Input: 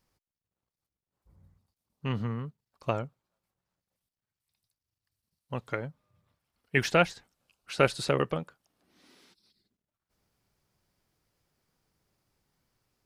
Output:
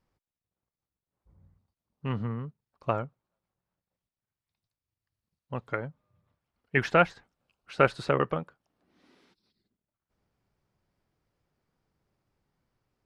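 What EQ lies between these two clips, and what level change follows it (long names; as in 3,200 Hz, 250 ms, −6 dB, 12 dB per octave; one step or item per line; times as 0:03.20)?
dynamic equaliser 1,300 Hz, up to +6 dB, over −40 dBFS, Q 0.88
low-pass filter 1,800 Hz 6 dB per octave
0.0 dB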